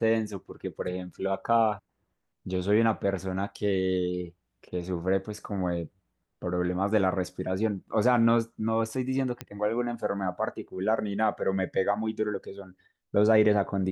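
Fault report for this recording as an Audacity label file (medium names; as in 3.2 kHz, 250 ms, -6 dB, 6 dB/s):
9.410000	9.410000	pop -18 dBFS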